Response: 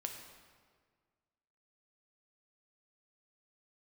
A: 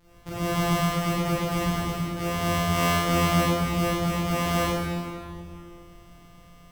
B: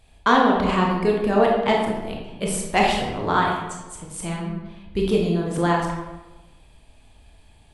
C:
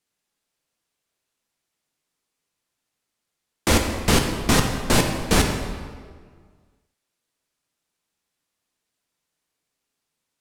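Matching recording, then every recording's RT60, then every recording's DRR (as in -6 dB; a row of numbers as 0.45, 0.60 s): C; 2.4, 1.1, 1.7 s; -11.0, -1.5, 3.0 dB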